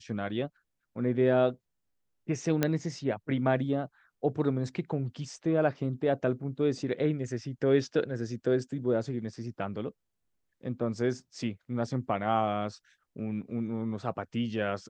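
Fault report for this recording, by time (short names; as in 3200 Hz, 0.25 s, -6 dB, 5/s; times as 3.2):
2.63 pop -11 dBFS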